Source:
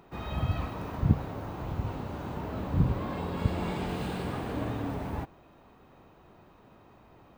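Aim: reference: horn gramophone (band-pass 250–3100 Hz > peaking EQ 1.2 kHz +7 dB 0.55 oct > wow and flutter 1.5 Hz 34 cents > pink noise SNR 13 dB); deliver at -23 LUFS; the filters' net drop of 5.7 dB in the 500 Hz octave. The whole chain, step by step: band-pass 250–3100 Hz; peaking EQ 500 Hz -7.5 dB; peaking EQ 1.2 kHz +7 dB 0.55 oct; wow and flutter 1.5 Hz 34 cents; pink noise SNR 13 dB; trim +15 dB

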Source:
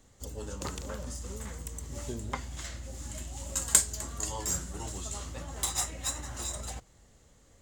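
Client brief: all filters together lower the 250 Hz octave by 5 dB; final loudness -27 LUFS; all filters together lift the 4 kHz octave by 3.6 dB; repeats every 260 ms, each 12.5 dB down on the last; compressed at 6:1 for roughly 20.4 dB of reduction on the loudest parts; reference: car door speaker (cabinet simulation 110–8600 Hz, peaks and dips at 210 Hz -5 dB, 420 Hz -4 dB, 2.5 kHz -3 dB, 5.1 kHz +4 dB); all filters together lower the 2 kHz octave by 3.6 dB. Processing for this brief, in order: peaking EQ 250 Hz -3.5 dB; peaking EQ 2 kHz -4.5 dB; peaking EQ 4 kHz +3.5 dB; compression 6:1, threshold -41 dBFS; cabinet simulation 110–8600 Hz, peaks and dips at 210 Hz -5 dB, 420 Hz -4 dB, 2.5 kHz -3 dB, 5.1 kHz +4 dB; feedback delay 260 ms, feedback 24%, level -12.5 dB; trim +18.5 dB

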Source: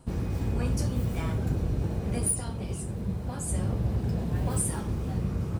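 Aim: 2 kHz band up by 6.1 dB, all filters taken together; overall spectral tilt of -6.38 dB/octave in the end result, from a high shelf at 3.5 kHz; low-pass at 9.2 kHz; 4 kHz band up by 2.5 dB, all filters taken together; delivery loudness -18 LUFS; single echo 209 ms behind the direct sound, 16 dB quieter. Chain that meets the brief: low-pass 9.2 kHz; peaking EQ 2 kHz +8.5 dB; treble shelf 3.5 kHz -6.5 dB; peaking EQ 4 kHz +5 dB; delay 209 ms -16 dB; trim +12.5 dB

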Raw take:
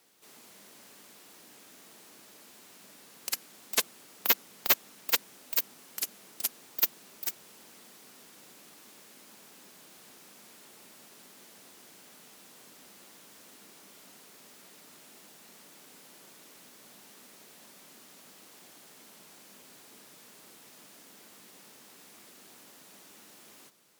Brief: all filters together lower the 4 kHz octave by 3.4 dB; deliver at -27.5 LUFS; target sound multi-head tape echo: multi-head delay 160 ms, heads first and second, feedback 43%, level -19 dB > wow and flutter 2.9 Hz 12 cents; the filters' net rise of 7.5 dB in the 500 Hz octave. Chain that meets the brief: peaking EQ 500 Hz +9 dB; peaking EQ 4 kHz -4.5 dB; multi-head delay 160 ms, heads first and second, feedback 43%, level -19 dB; wow and flutter 2.9 Hz 12 cents; trim +3.5 dB

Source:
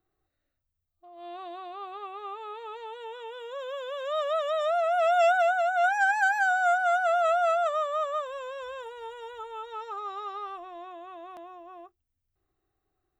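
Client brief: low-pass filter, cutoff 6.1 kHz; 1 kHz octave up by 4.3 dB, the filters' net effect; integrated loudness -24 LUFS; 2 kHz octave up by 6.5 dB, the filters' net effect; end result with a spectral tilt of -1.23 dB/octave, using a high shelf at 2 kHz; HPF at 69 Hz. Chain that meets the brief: high-pass 69 Hz; low-pass 6.1 kHz; peaking EQ 1 kHz +5.5 dB; treble shelf 2 kHz -3.5 dB; peaking EQ 2 kHz +9 dB; trim -2 dB

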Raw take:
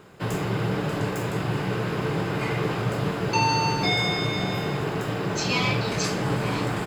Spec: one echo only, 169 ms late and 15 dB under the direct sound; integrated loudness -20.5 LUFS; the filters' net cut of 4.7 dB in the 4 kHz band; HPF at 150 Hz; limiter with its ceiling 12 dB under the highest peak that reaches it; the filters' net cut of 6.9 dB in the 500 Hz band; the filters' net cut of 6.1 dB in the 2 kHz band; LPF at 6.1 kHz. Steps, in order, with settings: high-pass 150 Hz; low-pass 6.1 kHz; peaking EQ 500 Hz -8.5 dB; peaking EQ 2 kHz -6.5 dB; peaking EQ 4 kHz -3 dB; peak limiter -25.5 dBFS; delay 169 ms -15 dB; trim +13.5 dB

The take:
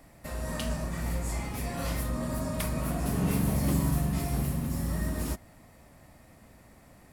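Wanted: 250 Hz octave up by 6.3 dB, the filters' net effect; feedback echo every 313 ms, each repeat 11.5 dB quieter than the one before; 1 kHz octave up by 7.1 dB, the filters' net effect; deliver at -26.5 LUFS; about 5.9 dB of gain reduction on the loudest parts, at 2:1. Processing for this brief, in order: peaking EQ 250 Hz +8 dB; peaking EQ 1 kHz +8.5 dB; compression 2:1, threshold -29 dBFS; feedback delay 313 ms, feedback 27%, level -11.5 dB; trim +4.5 dB

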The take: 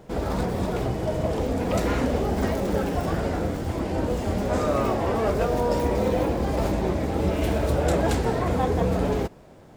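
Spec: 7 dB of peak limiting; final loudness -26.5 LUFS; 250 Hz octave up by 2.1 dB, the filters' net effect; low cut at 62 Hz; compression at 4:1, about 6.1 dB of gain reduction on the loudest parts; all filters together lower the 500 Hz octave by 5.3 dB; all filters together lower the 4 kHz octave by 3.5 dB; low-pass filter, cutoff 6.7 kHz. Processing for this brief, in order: high-pass 62 Hz; low-pass 6.7 kHz; peaking EQ 250 Hz +5 dB; peaking EQ 500 Hz -8 dB; peaking EQ 4 kHz -4 dB; compression 4:1, threshold -26 dBFS; trim +6.5 dB; peak limiter -17.5 dBFS

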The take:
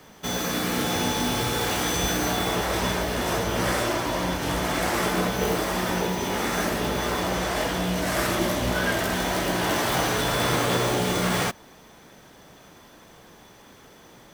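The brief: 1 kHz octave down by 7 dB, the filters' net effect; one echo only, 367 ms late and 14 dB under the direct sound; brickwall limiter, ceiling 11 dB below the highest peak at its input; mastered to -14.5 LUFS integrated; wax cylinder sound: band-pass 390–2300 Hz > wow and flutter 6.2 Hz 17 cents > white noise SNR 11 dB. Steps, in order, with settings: peaking EQ 1 kHz -9 dB; peak limiter -23.5 dBFS; band-pass 390–2300 Hz; delay 367 ms -14 dB; wow and flutter 6.2 Hz 17 cents; white noise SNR 11 dB; trim +22.5 dB

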